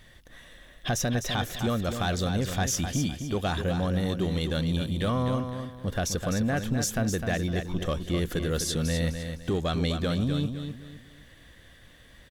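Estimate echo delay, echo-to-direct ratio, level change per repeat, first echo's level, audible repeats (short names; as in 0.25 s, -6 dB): 0.255 s, -7.0 dB, -10.0 dB, -7.5 dB, 3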